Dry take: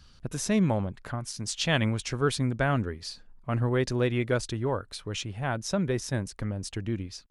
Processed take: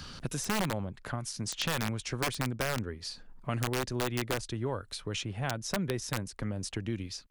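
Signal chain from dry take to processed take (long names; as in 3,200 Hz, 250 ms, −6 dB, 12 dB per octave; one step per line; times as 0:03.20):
wrap-around overflow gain 17.5 dB
multiband upward and downward compressor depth 70%
level −5.5 dB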